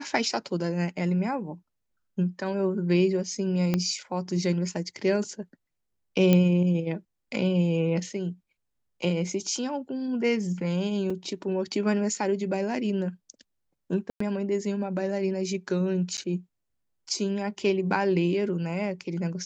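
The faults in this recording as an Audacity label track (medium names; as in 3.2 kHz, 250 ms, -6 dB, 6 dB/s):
3.740000	3.740000	pop -12 dBFS
6.330000	6.330000	pop -9 dBFS
11.100000	11.100000	dropout 4 ms
14.100000	14.200000	dropout 104 ms
16.170000	16.180000	dropout 9 ms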